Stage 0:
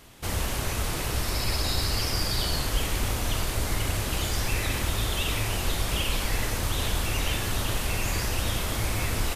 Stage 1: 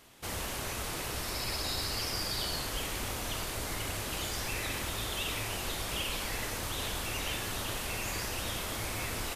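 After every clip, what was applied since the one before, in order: bass shelf 150 Hz -9.5 dB; trim -5 dB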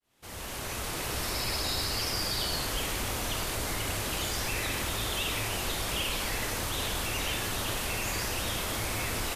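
fade-in on the opening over 1.22 s; in parallel at +1 dB: peak limiter -33 dBFS, peak gain reduction 10 dB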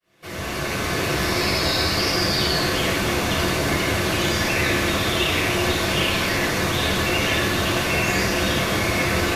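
reverberation RT60 0.80 s, pre-delay 3 ms, DRR -2 dB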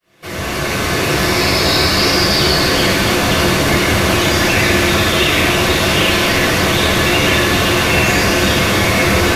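in parallel at -5.5 dB: saturation -18 dBFS, distortion -15 dB; on the sum: two-band feedback delay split 2.5 kHz, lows 653 ms, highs 289 ms, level -6.5 dB; trim +4 dB

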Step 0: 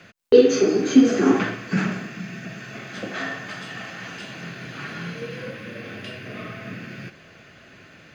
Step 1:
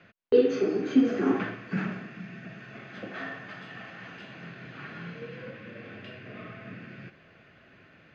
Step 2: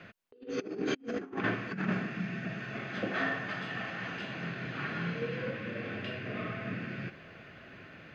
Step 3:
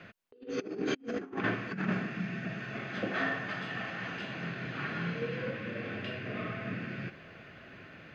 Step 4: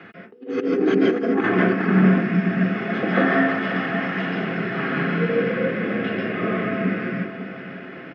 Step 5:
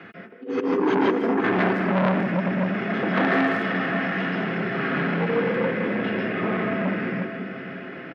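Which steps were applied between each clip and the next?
low-pass 3 kHz 12 dB/octave; trim -7.5 dB
compressor with a negative ratio -33 dBFS, ratio -0.5
no audible change
delay 541 ms -12 dB; reverberation RT60 0.30 s, pre-delay 140 ms, DRR -1.5 dB
speakerphone echo 160 ms, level -9 dB; transformer saturation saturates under 1.1 kHz

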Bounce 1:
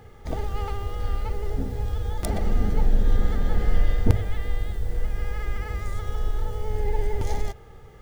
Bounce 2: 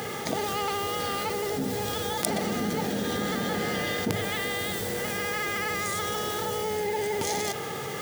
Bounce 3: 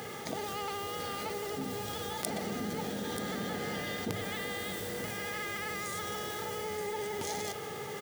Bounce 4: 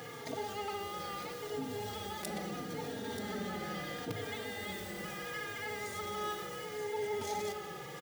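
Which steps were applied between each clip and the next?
high-pass 150 Hz 24 dB/octave; treble shelf 2.3 kHz +11 dB; level flattener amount 70%; trim -3.5 dB
delay 933 ms -9 dB; trim -8 dB
in parallel at -8 dB: sample-rate reducer 18 kHz; on the sum: feedback comb 420 Hz, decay 0.69 s, mix 70%; endless flanger 3.7 ms -0.75 Hz; trim +6.5 dB

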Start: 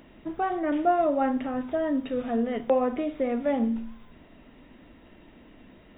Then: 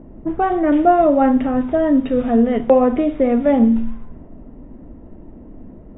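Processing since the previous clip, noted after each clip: level-controlled noise filter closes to 660 Hz, open at -23 dBFS; tilt EQ -2 dB/octave; trim +8.5 dB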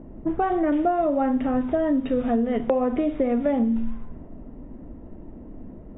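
compression, threshold -17 dBFS, peak gain reduction 9.5 dB; trim -2 dB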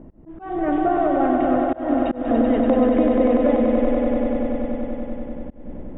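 echo with a slow build-up 96 ms, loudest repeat 5, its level -6.5 dB; slow attack 228 ms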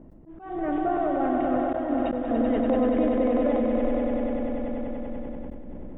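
decay stretcher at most 22 dB/s; trim -6.5 dB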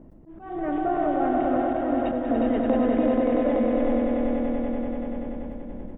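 delay 359 ms -4.5 dB

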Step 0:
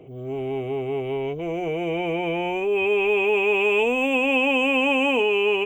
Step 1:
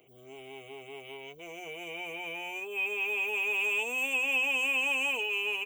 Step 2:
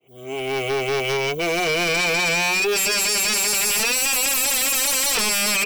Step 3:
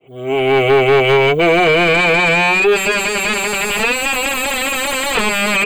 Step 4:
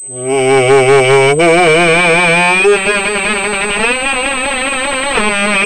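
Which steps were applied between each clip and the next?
pre-emphasis filter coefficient 0.97; reverb removal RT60 0.66 s; dynamic bell 3.2 kHz, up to -6 dB, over -56 dBFS, Q 7.7; trim +5.5 dB
fade-in on the opening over 0.68 s; in parallel at -1 dB: compression, threshold -39 dBFS, peak gain reduction 13 dB; on the sum: sine folder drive 16 dB, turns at -17.5 dBFS
in parallel at -0.5 dB: gain riding within 4 dB; on the sum: boxcar filter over 8 samples; trim +4.5 dB
class-D stage that switches slowly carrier 8.2 kHz; trim +4 dB

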